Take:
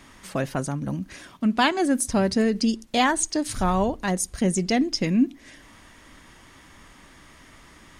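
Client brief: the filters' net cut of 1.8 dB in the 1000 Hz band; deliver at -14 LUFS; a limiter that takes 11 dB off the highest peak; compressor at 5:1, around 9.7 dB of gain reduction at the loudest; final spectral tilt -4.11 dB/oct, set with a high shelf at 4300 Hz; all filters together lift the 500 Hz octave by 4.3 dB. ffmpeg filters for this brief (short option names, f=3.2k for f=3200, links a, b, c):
-af "equalizer=f=500:t=o:g=7,equalizer=f=1k:t=o:g=-6.5,highshelf=f=4.3k:g=8,acompressor=threshold=-25dB:ratio=5,volume=19.5dB,alimiter=limit=-5dB:level=0:latency=1"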